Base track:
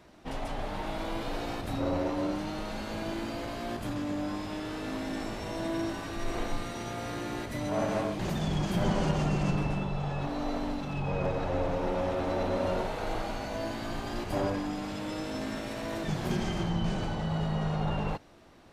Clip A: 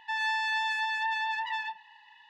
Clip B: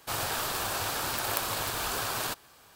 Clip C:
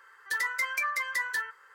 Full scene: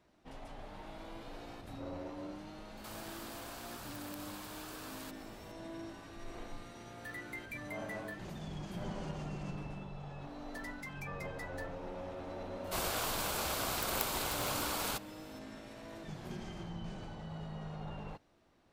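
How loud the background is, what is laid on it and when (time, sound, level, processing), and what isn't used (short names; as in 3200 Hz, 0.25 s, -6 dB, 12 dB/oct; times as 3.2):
base track -13.5 dB
2.77 add B -5.5 dB + compressor 3:1, threshold -44 dBFS
6.74 add C -15 dB + fixed phaser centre 2400 Hz, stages 4
10.24 add C -17.5 dB
12.64 add B -4.5 dB + frequency shift -170 Hz
not used: A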